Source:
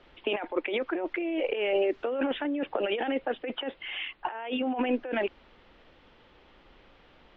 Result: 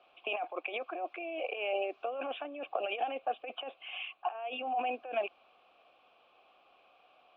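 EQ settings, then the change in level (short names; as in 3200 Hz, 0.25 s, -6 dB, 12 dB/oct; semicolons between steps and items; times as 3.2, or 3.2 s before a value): vowel filter a; high shelf 3000 Hz +12 dB; +4.0 dB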